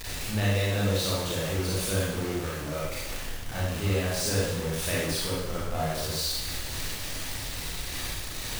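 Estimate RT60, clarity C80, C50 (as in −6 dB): 0.95 s, 2.0 dB, −2.5 dB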